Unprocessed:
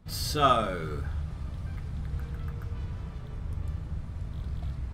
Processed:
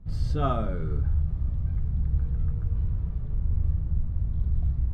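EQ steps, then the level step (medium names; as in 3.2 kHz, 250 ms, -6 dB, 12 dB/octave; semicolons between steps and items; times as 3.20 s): low-pass 10 kHz 12 dB/octave; tilt EQ -4 dB/octave; -7.0 dB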